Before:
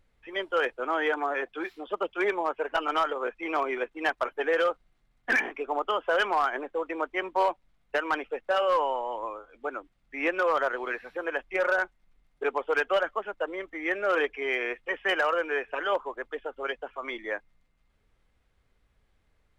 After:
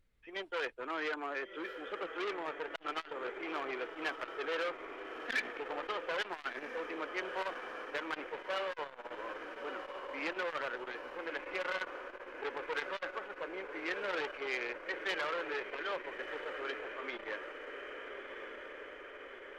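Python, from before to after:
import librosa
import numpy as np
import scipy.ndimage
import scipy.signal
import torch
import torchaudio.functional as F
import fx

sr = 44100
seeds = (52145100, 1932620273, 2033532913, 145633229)

p1 = fx.peak_eq(x, sr, hz=790.0, db=-7.0, octaves=0.88)
p2 = p1 + fx.echo_diffused(p1, sr, ms=1286, feedback_pct=67, wet_db=-9, dry=0)
p3 = fx.transformer_sat(p2, sr, knee_hz=2100.0)
y = F.gain(torch.from_numpy(p3), -5.5).numpy()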